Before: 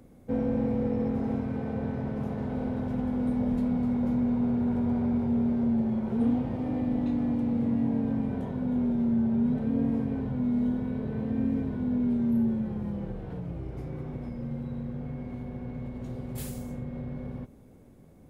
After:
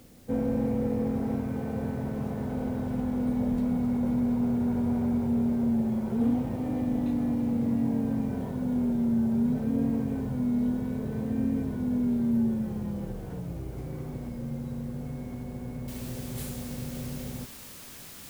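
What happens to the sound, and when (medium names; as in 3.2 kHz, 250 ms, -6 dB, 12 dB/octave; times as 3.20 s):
15.88 s: noise floor step -61 dB -46 dB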